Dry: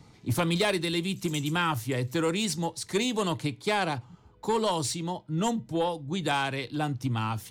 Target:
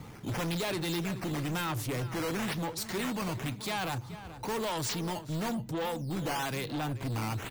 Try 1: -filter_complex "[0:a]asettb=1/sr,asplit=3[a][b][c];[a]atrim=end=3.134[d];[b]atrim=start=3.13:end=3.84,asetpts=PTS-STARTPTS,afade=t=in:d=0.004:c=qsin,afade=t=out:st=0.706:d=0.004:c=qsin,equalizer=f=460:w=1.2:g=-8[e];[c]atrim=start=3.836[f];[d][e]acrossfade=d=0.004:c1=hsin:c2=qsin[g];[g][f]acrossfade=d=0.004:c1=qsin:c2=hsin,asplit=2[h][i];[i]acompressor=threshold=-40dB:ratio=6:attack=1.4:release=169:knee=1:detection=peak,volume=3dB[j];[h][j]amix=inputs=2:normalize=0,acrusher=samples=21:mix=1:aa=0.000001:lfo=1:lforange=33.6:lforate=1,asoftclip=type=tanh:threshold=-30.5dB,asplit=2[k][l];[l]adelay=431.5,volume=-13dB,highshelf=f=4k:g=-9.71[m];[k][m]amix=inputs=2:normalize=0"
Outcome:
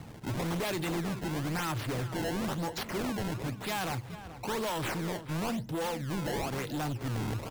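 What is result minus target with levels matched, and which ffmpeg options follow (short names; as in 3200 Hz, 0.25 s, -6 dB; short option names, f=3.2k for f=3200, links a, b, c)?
decimation with a swept rate: distortion +6 dB
-filter_complex "[0:a]asettb=1/sr,asplit=3[a][b][c];[a]atrim=end=3.134[d];[b]atrim=start=3.13:end=3.84,asetpts=PTS-STARTPTS,afade=t=in:d=0.004:c=qsin,afade=t=out:st=0.706:d=0.004:c=qsin,equalizer=f=460:w=1.2:g=-8[e];[c]atrim=start=3.836[f];[d][e]acrossfade=d=0.004:c1=hsin:c2=qsin[g];[g][f]acrossfade=d=0.004:c1=qsin:c2=hsin,asplit=2[h][i];[i]acompressor=threshold=-40dB:ratio=6:attack=1.4:release=169:knee=1:detection=peak,volume=3dB[j];[h][j]amix=inputs=2:normalize=0,acrusher=samples=7:mix=1:aa=0.000001:lfo=1:lforange=11.2:lforate=1,asoftclip=type=tanh:threshold=-30.5dB,asplit=2[k][l];[l]adelay=431.5,volume=-13dB,highshelf=f=4k:g=-9.71[m];[k][m]amix=inputs=2:normalize=0"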